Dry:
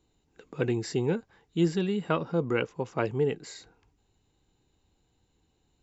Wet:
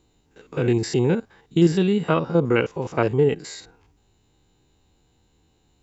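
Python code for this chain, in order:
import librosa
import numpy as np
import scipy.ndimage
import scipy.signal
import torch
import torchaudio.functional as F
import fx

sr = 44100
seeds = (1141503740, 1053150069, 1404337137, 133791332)

y = fx.spec_steps(x, sr, hold_ms=50)
y = F.gain(torch.from_numpy(y), 9.0).numpy()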